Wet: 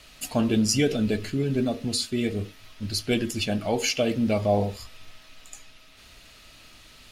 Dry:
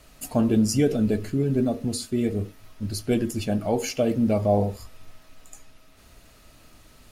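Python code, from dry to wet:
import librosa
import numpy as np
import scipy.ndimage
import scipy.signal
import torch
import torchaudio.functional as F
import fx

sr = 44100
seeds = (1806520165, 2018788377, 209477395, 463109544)

y = fx.peak_eq(x, sr, hz=3300.0, db=12.0, octaves=2.1)
y = y * 10.0 ** (-2.5 / 20.0)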